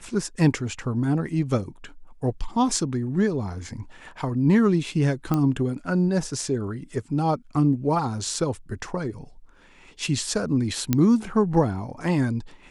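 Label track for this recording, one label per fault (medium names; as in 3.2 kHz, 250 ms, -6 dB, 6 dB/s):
5.340000	5.340000	pop -12 dBFS
10.930000	10.930000	pop -7 dBFS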